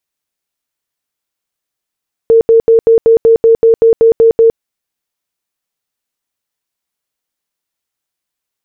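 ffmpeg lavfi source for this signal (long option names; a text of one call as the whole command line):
ffmpeg -f lavfi -i "aevalsrc='0.708*sin(2*PI*455*mod(t,0.19))*lt(mod(t,0.19),50/455)':duration=2.28:sample_rate=44100" out.wav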